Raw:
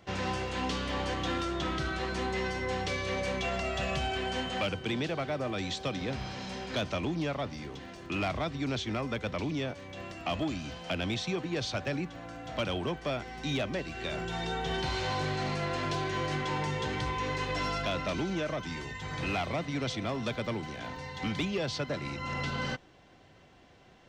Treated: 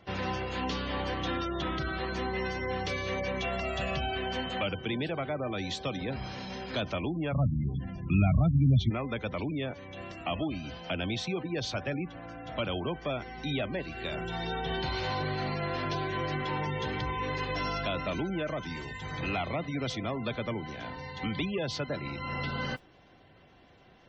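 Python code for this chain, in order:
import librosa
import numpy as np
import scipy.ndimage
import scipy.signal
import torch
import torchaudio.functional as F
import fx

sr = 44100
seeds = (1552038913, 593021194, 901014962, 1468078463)

y = fx.low_shelf_res(x, sr, hz=240.0, db=13.0, q=1.5, at=(7.32, 8.89), fade=0.02)
y = fx.mod_noise(y, sr, seeds[0], snr_db=19)
y = fx.spec_gate(y, sr, threshold_db=-25, keep='strong')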